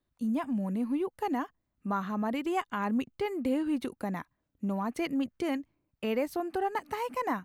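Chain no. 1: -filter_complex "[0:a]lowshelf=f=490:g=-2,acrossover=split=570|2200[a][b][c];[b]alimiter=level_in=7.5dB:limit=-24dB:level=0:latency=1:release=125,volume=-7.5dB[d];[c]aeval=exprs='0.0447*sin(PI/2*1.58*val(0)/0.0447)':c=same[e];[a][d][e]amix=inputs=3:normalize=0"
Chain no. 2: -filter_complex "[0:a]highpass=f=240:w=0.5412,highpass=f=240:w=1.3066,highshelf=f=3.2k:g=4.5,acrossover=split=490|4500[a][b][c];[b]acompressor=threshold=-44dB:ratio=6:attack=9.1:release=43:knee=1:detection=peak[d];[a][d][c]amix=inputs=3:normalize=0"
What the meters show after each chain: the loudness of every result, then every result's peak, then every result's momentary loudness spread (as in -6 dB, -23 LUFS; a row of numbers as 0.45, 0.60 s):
-34.0, -36.0 LUFS; -19.0, -22.0 dBFS; 6, 10 LU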